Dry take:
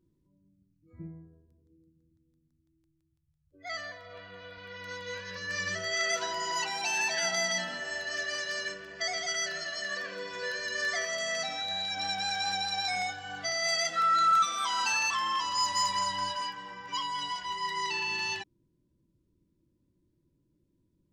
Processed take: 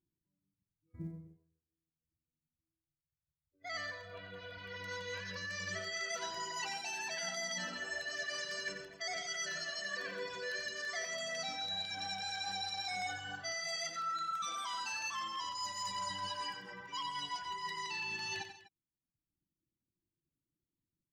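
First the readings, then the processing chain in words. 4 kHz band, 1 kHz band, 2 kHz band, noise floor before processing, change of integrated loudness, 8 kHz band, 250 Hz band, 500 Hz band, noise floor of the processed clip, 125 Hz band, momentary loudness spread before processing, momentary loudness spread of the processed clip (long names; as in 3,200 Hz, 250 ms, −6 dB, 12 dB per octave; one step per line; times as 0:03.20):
−7.5 dB, −10.0 dB, −7.5 dB, −74 dBFS, −9.0 dB, −8.0 dB, −5.0 dB, −7.5 dB, below −85 dBFS, −3.0 dB, 14 LU, 7 LU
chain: noise gate −55 dBFS, range −19 dB
reverb reduction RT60 1.1 s
parametric band 150 Hz +3 dB 1.5 octaves
reversed playback
downward compressor 6 to 1, threshold −38 dBFS, peak gain reduction 14 dB
reversed playback
floating-point word with a short mantissa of 6 bits
on a send: multi-tap delay 91/135/248 ms −8.5/−16.5/−18 dB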